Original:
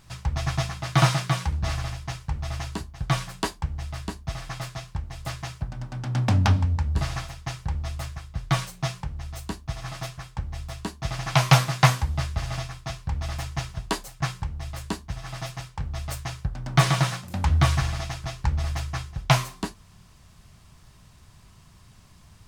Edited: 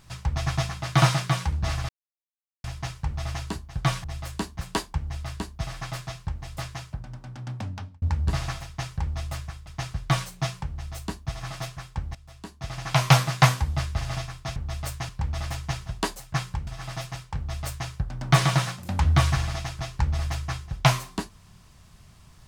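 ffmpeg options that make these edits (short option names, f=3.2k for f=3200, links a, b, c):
-filter_complex "[0:a]asplit=11[a][b][c][d][e][f][g][h][i][j][k];[a]atrim=end=1.89,asetpts=PTS-STARTPTS,afade=t=out:st=1.886:d=0.004:c=hsin,apad=pad_dur=0.75[l];[b]atrim=start=1.89:end=3.292,asetpts=PTS-STARTPTS,afade=t=in:d=0.004:c=hsin[m];[c]atrim=start=14.548:end=15.122[n];[d]atrim=start=3.288:end=6.7,asetpts=PTS-STARTPTS,afade=t=out:st=1.802:d=1.61[o];[e]atrim=start=6.7:end=8.352,asetpts=PTS-STARTPTS,afade=t=in:d=0.004:c=hsin[p];[f]atrim=start=7.348:end=7.622[q];[g]atrim=start=8.348:end=10.56,asetpts=PTS-STARTPTS,afade=t=out:st=2.208:d=0.004:c=hsin:silence=0.11885[r];[h]atrim=start=10.56:end=12.972,asetpts=PTS-STARTPTS,afade=t=in:d=1.02:silence=0.11885[s];[i]atrim=start=15.808:end=16.342[t];[j]atrim=start=12.968:end=14.552[u];[k]atrim=start=15.118[v];[l][m]concat=n=2:v=0:a=1[w];[w][n]acrossfade=d=0.004:c1=hsin:c2=hsin[x];[o][p]concat=n=2:v=0:a=1[y];[x][y]acrossfade=d=0.004:c1=hsin:c2=hsin[z];[z][q]acrossfade=d=0.004:c1=hsin:c2=hsin[aa];[r][s]concat=n=2:v=0:a=1[ab];[aa][ab]acrossfade=d=0.004:c1=hsin:c2=hsin[ac];[ac][t]acrossfade=d=0.004:c1=hsin:c2=hsin[ad];[ad][u]acrossfade=d=0.004:c1=hsin:c2=hsin[ae];[ae][v]acrossfade=d=0.004:c1=hsin:c2=hsin"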